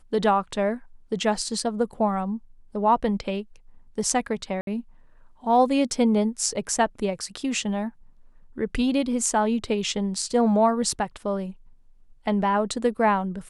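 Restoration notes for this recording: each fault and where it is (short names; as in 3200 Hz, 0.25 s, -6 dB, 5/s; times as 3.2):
4.61–4.67 gap 62 ms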